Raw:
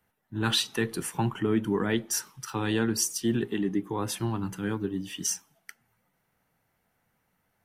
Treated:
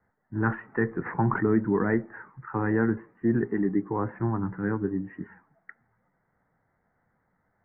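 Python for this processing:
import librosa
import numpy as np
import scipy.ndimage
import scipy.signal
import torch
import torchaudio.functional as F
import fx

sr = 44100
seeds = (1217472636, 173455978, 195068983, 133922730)

y = scipy.signal.sosfilt(scipy.signal.butter(12, 2000.0, 'lowpass', fs=sr, output='sos'), x)
y = fx.sustainer(y, sr, db_per_s=73.0, at=(1.05, 1.5), fade=0.02)
y = y * 10.0 ** (2.5 / 20.0)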